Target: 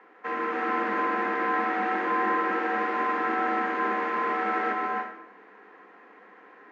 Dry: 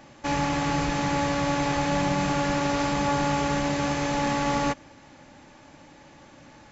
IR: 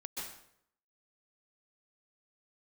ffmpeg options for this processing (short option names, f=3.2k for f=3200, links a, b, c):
-filter_complex "[0:a]afreqshift=180,lowpass=f=1.7k:t=q:w=3,asplit=2[a][b];[1:a]atrim=start_sample=2205,adelay=149[c];[b][c]afir=irnorm=-1:irlink=0,volume=1dB[d];[a][d]amix=inputs=2:normalize=0,volume=-7.5dB"